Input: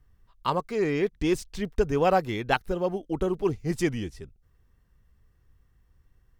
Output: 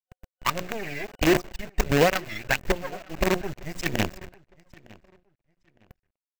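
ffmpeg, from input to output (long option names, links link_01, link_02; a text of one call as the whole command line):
ffmpeg -i in.wav -filter_complex "[0:a]bandreject=frequency=60:width_type=h:width=6,bandreject=frequency=120:width_type=h:width=6,bandreject=frequency=180:width_type=h:width=6,bandreject=frequency=240:width_type=h:width=6,bandreject=frequency=300:width_type=h:width=6,bandreject=frequency=360:width_type=h:width=6,bandreject=frequency=420:width_type=h:width=6,aphaser=in_gain=1:out_gain=1:delay=1.5:decay=0.77:speed=1.5:type=sinusoidal,asplit=2[link_01][link_02];[link_02]acompressor=threshold=-24dB:ratio=6,volume=0dB[link_03];[link_01][link_03]amix=inputs=2:normalize=0,acrusher=bits=3:dc=4:mix=0:aa=0.000001,superequalizer=8b=1.58:11b=1.78:12b=1.78:16b=0.398,asplit=2[link_04][link_05];[link_05]adelay=909,lowpass=frequency=4100:poles=1,volume=-23.5dB,asplit=2[link_06][link_07];[link_07]adelay=909,lowpass=frequency=4100:poles=1,volume=0.27[link_08];[link_06][link_08]amix=inputs=2:normalize=0[link_09];[link_04][link_09]amix=inputs=2:normalize=0,volume=-8.5dB" out.wav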